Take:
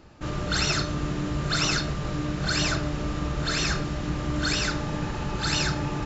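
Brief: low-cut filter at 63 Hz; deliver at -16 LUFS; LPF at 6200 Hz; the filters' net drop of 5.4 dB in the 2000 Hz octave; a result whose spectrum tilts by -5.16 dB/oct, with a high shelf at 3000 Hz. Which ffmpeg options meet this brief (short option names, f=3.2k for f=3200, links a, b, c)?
-af "highpass=63,lowpass=6.2k,equalizer=f=2k:t=o:g=-6,highshelf=f=3k:g=-4.5,volume=13.5dB"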